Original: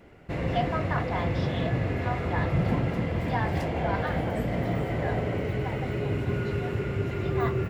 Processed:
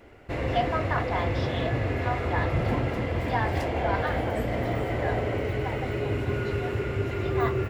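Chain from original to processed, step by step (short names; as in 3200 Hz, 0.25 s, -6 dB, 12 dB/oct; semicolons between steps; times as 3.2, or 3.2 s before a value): bell 170 Hz -12 dB 0.56 oct; gain +2.5 dB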